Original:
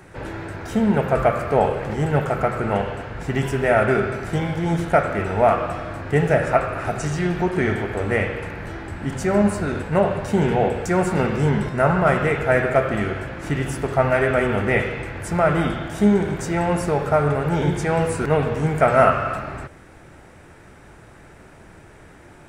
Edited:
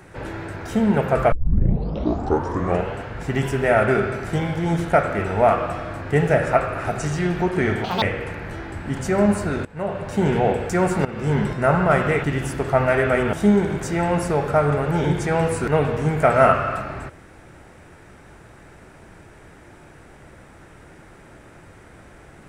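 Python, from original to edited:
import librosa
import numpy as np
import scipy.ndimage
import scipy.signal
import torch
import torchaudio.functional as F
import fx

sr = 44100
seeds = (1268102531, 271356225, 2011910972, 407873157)

y = fx.edit(x, sr, fx.tape_start(start_s=1.32, length_s=1.63),
    fx.speed_span(start_s=7.84, length_s=0.34, speed=1.88),
    fx.fade_in_from(start_s=9.81, length_s=0.64, floor_db=-19.0),
    fx.fade_in_from(start_s=11.21, length_s=0.33, floor_db=-16.0),
    fx.cut(start_s=12.4, length_s=1.08),
    fx.cut(start_s=14.57, length_s=1.34), tone=tone)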